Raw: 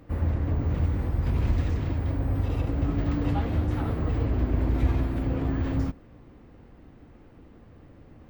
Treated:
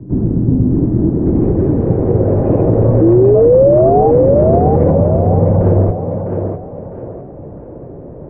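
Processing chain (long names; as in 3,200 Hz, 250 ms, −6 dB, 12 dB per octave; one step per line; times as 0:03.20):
0:04.90–0:05.61: phaser with its sweep stopped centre 520 Hz, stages 6
single-sideband voice off tune −170 Hz 240–3,300 Hz
0:03.01–0:04.11: sound drawn into the spectrogram rise 320–820 Hz −30 dBFS
feedback echo with a high-pass in the loop 654 ms, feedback 38%, high-pass 170 Hz, level −5.5 dB
low-pass filter sweep 260 Hz → 530 Hz, 0:00.60–0:02.43
boost into a limiter +23 dB
level −1 dB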